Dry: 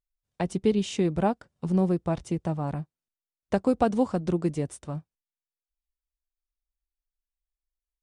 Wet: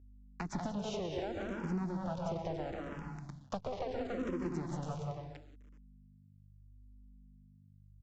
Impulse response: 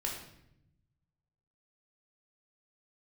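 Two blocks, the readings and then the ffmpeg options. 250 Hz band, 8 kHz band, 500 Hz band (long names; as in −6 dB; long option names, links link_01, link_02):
−12.5 dB, −10.5 dB, −11.0 dB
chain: -filter_complex "[0:a]aeval=exprs='max(val(0),0)':channel_layout=same,aecho=1:1:186.6|279.9:0.562|0.398,asplit=2[link_01][link_02];[1:a]atrim=start_sample=2205,adelay=124[link_03];[link_02][link_03]afir=irnorm=-1:irlink=0,volume=-9dB[link_04];[link_01][link_04]amix=inputs=2:normalize=0,alimiter=limit=-17.5dB:level=0:latency=1:release=167,acrusher=bits=8:dc=4:mix=0:aa=0.000001,aresample=16000,aresample=44100,acrossover=split=480|3000[link_05][link_06][link_07];[link_06]acompressor=threshold=-35dB:ratio=6[link_08];[link_05][link_08][link_07]amix=inputs=3:normalize=0,highpass=frequency=41:poles=1,acompressor=threshold=-36dB:ratio=2.5,aeval=exprs='val(0)+0.00141*(sin(2*PI*50*n/s)+sin(2*PI*2*50*n/s)/2+sin(2*PI*3*50*n/s)/3+sin(2*PI*4*50*n/s)/4+sin(2*PI*5*50*n/s)/5)':channel_layout=same,asplit=2[link_09][link_10];[link_10]afreqshift=-0.73[link_11];[link_09][link_11]amix=inputs=2:normalize=1,volume=3dB"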